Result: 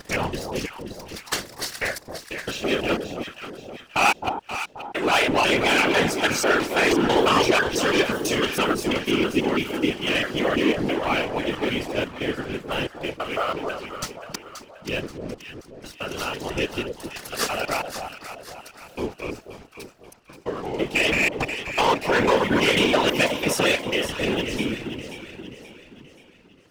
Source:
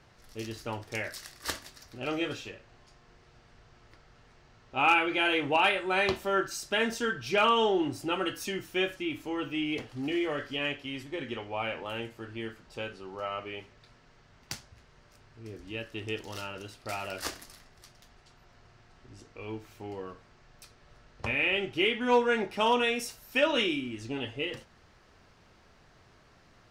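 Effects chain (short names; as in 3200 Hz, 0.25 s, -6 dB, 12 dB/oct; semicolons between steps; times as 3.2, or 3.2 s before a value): slices in reverse order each 0.165 s, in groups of 6; low shelf 76 Hz -9 dB; sample leveller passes 3; echo with dull and thin repeats by turns 0.265 s, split 920 Hz, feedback 66%, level -6 dB; whisperiser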